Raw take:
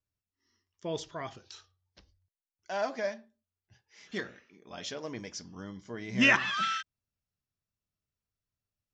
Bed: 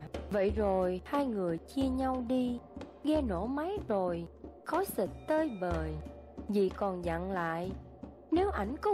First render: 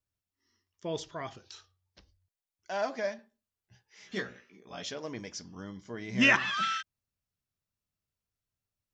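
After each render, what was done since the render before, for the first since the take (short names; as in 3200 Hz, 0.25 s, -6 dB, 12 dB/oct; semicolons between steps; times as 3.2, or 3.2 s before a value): 3.17–4.83 doubler 16 ms -4.5 dB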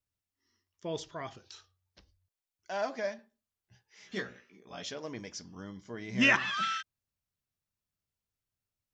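gain -1.5 dB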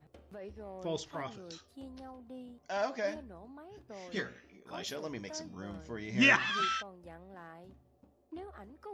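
add bed -16.5 dB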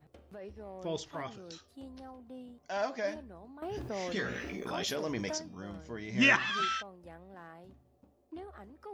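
3.62–5.38 fast leveller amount 70%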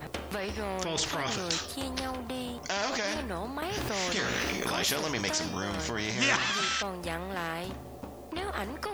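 in parallel at +2 dB: negative-ratio compressor -46 dBFS, ratio -1; on the sum: spectral compressor 2:1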